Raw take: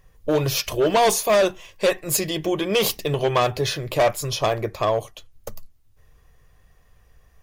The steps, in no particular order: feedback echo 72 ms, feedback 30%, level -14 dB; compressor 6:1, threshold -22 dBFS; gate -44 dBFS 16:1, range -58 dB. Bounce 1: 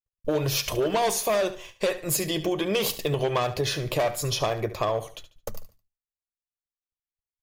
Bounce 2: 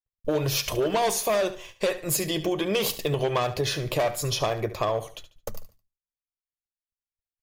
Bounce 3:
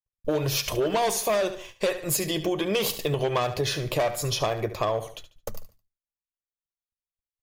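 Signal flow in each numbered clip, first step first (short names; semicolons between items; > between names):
compressor > gate > feedback echo; gate > compressor > feedback echo; gate > feedback echo > compressor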